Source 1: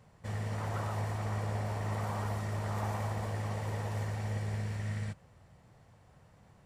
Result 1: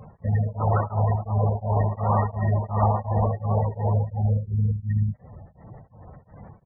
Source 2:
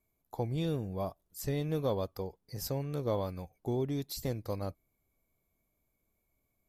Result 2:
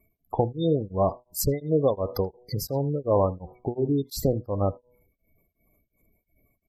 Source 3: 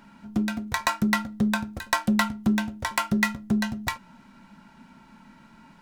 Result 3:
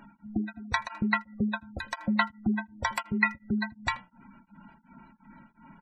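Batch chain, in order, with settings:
de-hum 122.8 Hz, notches 28; spectral gate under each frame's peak -20 dB strong; dynamic bell 160 Hz, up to -7 dB, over -40 dBFS, Q 0.78; speakerphone echo 80 ms, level -20 dB; tremolo of two beating tones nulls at 2.8 Hz; peak normalisation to -9 dBFS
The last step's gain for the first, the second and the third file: +18.0 dB, +15.0 dB, +1.5 dB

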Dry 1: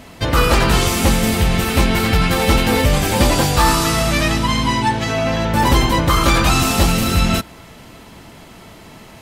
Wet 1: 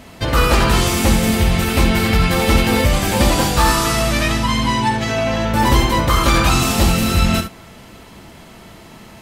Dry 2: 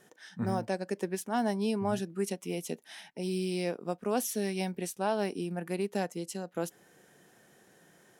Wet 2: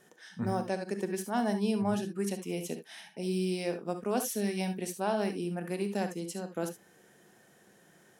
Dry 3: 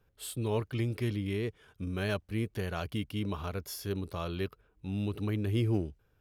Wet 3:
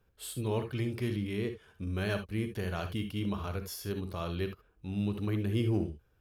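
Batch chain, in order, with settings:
gated-style reverb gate 90 ms rising, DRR 7.5 dB; trim -1 dB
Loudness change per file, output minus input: 0.0 LU, +0.5 LU, 0.0 LU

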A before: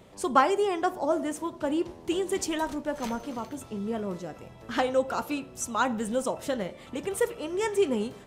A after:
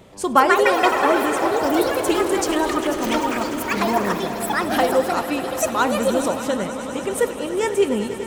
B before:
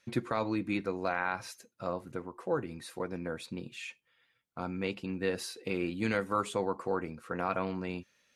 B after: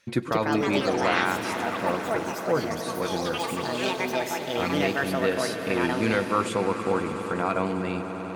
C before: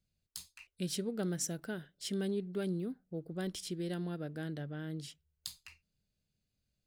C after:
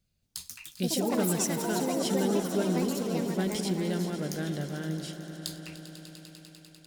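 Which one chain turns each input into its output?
echo with a slow build-up 99 ms, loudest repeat 5, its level -15.5 dB; ever faster or slower copies 227 ms, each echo +5 st, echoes 3; trim +6 dB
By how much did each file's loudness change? +9.0 LU, +9.0 LU, +9.5 LU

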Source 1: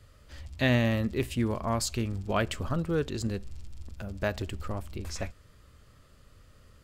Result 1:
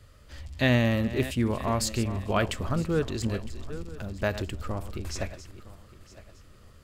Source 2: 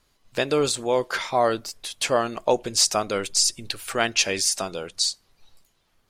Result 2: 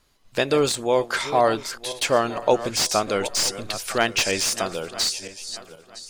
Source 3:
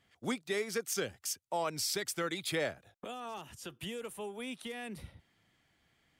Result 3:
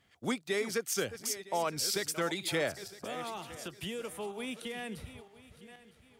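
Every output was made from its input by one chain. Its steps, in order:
backward echo that repeats 480 ms, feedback 50%, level -13 dB; slew-rate limiter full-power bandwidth 460 Hz; trim +2 dB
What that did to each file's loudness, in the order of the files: +2.0 LU, +0.5 LU, +2.0 LU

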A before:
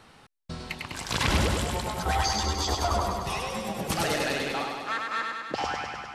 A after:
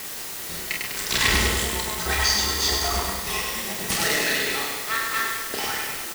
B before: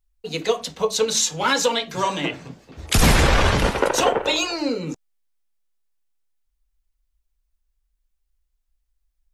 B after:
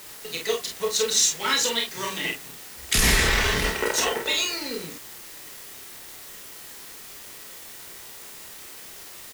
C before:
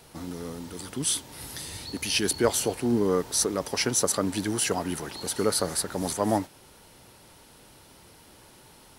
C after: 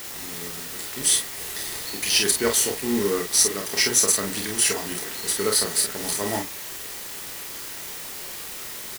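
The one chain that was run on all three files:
amplifier tone stack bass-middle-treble 5-5-5; comb 4.6 ms, depth 34%; in parallel at -6.5 dB: word length cut 6-bit, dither triangular; on the sum: small resonant body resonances 380/1900 Hz, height 10 dB, ringing for 20 ms; crossover distortion -45.5 dBFS; on a send: early reflections 30 ms -5.5 dB, 47 ms -5.5 dB; on the sum: normalise loudness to -23 LUFS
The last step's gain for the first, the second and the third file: +10.0 dB, +2.0 dB, +8.5 dB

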